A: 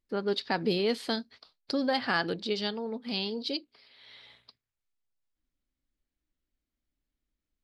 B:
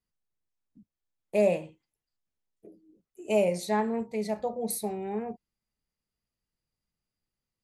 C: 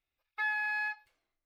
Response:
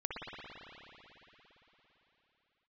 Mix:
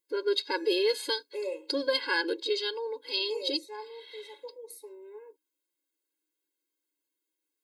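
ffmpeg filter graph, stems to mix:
-filter_complex "[0:a]highshelf=f=5.9k:g=12,bandreject=f=5.5k:w=9,volume=2.5dB[a];[1:a]lowshelf=f=66:g=4.5,volume=-4.5dB,afade=t=out:st=1.23:d=0.66:silence=0.473151[b];[2:a]asoftclip=type=tanh:threshold=-39dB,adelay=100,volume=-12dB[c];[a][b][c]amix=inputs=3:normalize=0,afftfilt=real='re*eq(mod(floor(b*sr/1024/280),2),1)':imag='im*eq(mod(floor(b*sr/1024/280),2),1)':win_size=1024:overlap=0.75"

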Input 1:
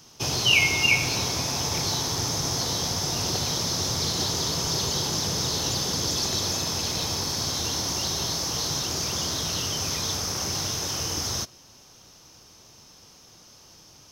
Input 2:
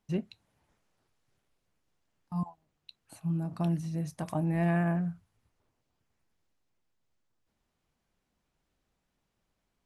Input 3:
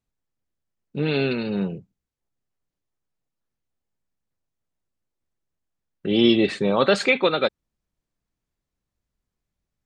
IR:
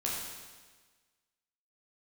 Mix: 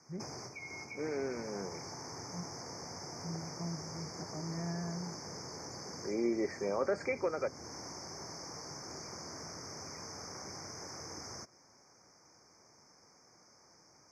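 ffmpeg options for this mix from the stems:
-filter_complex "[0:a]highpass=f=300:p=1,equalizer=f=3.6k:w=2.6:g=-13,acompressor=threshold=-32dB:ratio=6,volume=-6dB[a];[1:a]volume=-11.5dB[b];[2:a]highpass=500,volume=-5.5dB[c];[a][b][c]amix=inputs=3:normalize=0,lowpass=5.2k,acrossover=split=490[d][e];[e]acompressor=threshold=-45dB:ratio=2[f];[d][f]amix=inputs=2:normalize=0,asuperstop=centerf=3300:order=20:qfactor=1.5"

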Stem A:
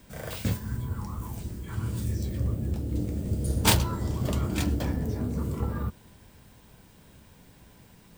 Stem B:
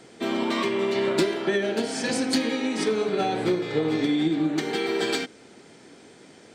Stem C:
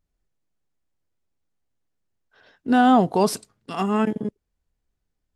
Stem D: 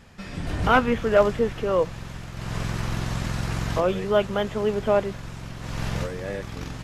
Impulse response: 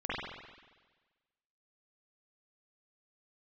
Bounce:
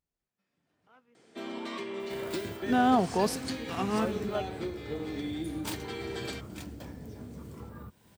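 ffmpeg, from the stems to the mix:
-filter_complex "[0:a]acompressor=threshold=-40dB:ratio=2,adelay=2000,volume=-4dB[a];[1:a]adelay=1150,volume=-12dB[b];[2:a]volume=-7.5dB,asplit=2[c][d];[3:a]highpass=160,adelay=200,volume=-13dB[e];[d]apad=whole_len=310375[f];[e][f]sidechaingate=range=-30dB:threshold=-59dB:ratio=16:detection=peak[g];[a][b][c][g]amix=inputs=4:normalize=0,highpass=f=120:p=1"

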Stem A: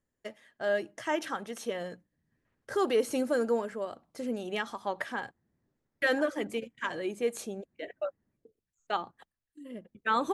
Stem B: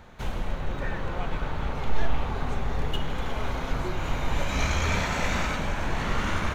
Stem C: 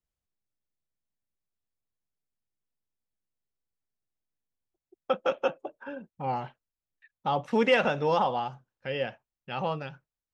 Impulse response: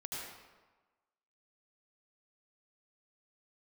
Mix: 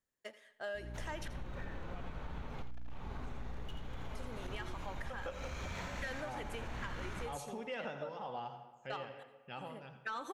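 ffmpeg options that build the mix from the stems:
-filter_complex "[0:a]lowshelf=f=440:g=-12,asoftclip=type=tanh:threshold=-23dB,volume=-3.5dB,asplit=3[a][b][c];[a]atrim=end=1.28,asetpts=PTS-STARTPTS,afade=t=out:st=1.276:d=0.004:c=hsin[d];[b]atrim=start=1.28:end=3.99,asetpts=PTS-STARTPTS,volume=0[e];[c]atrim=start=3.99,asetpts=PTS-STARTPTS,afade=t=in:d=0.004:c=hsin[f];[d][e][f]concat=n=3:v=0:a=1,asplit=3[g][h][i];[h]volume=-16.5dB[j];[i]volume=-15.5dB[k];[1:a]asoftclip=type=hard:threshold=-20dB,aeval=exprs='val(0)+0.02*(sin(2*PI*60*n/s)+sin(2*PI*2*60*n/s)/2+sin(2*PI*3*60*n/s)/3+sin(2*PI*4*60*n/s)/4+sin(2*PI*5*60*n/s)/5)':c=same,adelay=750,volume=-12.5dB,asplit=3[l][m][n];[m]volume=-19dB[o];[n]volume=-4.5dB[p];[2:a]tremolo=f=1.9:d=0.74,volume=-11.5dB,asplit=4[q][r][s][t];[r]volume=-7.5dB[u];[s]volume=-11dB[v];[t]apad=whole_len=321774[w];[l][w]sidechaincompress=threshold=-54dB:ratio=8:attack=16:release=241[x];[3:a]atrim=start_sample=2205[y];[j][o][u]amix=inputs=3:normalize=0[z];[z][y]afir=irnorm=-1:irlink=0[aa];[k][p][v]amix=inputs=3:normalize=0,aecho=0:1:84:1[ab];[g][x][q][aa][ab]amix=inputs=5:normalize=0,acompressor=threshold=-38dB:ratio=6"

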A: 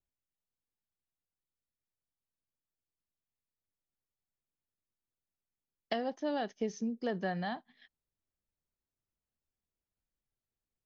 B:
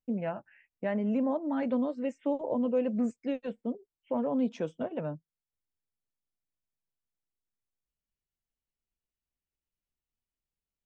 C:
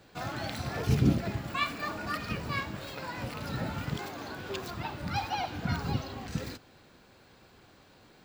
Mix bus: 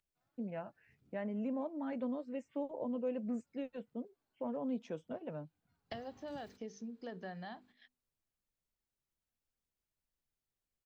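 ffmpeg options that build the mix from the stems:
-filter_complex "[0:a]bandreject=f=50:t=h:w=6,bandreject=f=100:t=h:w=6,bandreject=f=150:t=h:w=6,bandreject=f=200:t=h:w=6,bandreject=f=250:t=h:w=6,bandreject=f=300:t=h:w=6,bandreject=f=350:t=h:w=6,bandreject=f=400:t=h:w=6,bandreject=f=450:t=h:w=6,volume=-1dB,asplit=2[a][b];[1:a]adelay=300,volume=-9dB[c];[2:a]volume=-14.5dB[d];[b]apad=whole_len=363391[e];[d][e]sidechaingate=range=-34dB:threshold=-56dB:ratio=16:detection=peak[f];[a][f]amix=inputs=2:normalize=0,acompressor=threshold=-59dB:ratio=1.5,volume=0dB[g];[c][g]amix=inputs=2:normalize=0"

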